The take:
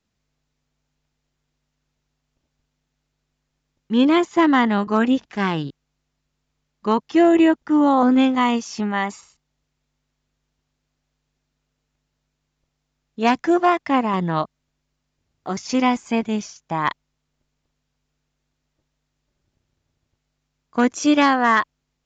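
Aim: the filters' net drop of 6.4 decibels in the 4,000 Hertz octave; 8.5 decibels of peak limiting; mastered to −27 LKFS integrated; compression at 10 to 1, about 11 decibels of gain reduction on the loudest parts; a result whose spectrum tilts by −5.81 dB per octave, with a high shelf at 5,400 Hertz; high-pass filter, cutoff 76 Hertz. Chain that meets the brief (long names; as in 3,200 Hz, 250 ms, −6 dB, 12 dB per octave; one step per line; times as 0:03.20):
high-pass filter 76 Hz
parametric band 4,000 Hz −8 dB
high-shelf EQ 5,400 Hz −3.5 dB
downward compressor 10 to 1, threshold −23 dBFS
level +3 dB
brickwall limiter −16.5 dBFS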